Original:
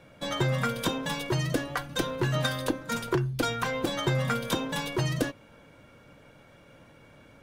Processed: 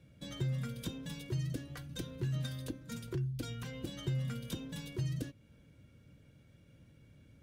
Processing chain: HPF 63 Hz; passive tone stack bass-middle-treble 10-0-1; in parallel at -1 dB: compressor, threshold -55 dBFS, peak gain reduction 16 dB; 3.47–4.58 on the sum: whine 2900 Hz -66 dBFS; gain +5.5 dB

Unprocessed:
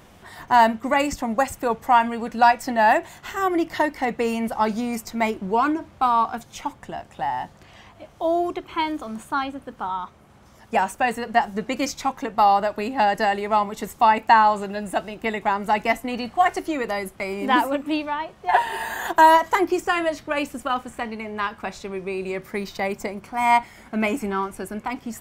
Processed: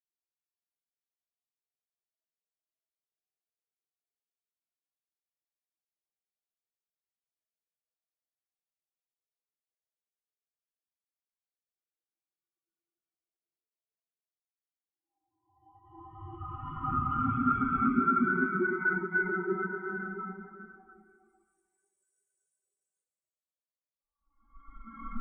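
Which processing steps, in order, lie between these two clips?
ring modulator 560 Hz; Paulstretch 33×, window 0.10 s, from 10.24; spectral expander 2.5:1; gain -5.5 dB

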